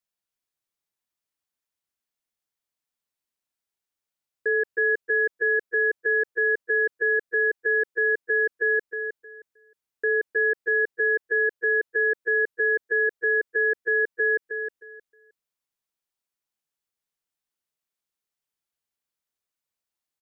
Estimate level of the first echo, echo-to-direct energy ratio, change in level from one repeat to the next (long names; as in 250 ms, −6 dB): −7.5 dB, −7.5 dB, −14.0 dB